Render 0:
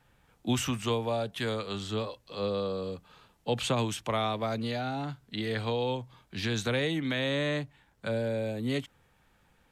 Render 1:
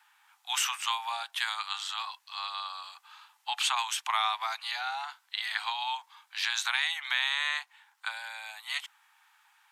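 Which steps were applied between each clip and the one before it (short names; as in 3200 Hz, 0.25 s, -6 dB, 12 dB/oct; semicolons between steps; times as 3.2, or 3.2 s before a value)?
steep high-pass 810 Hz 72 dB/oct; gain +5.5 dB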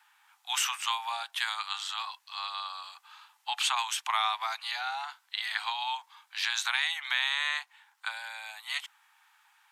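nothing audible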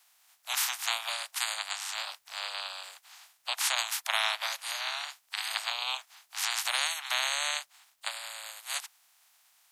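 spectral limiter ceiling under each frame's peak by 28 dB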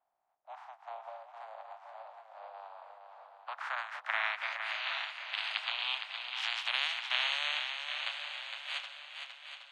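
low-pass sweep 680 Hz -> 3000 Hz, 2.39–4.93; swung echo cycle 0.77 s, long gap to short 1.5:1, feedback 43%, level -6.5 dB; gain -7 dB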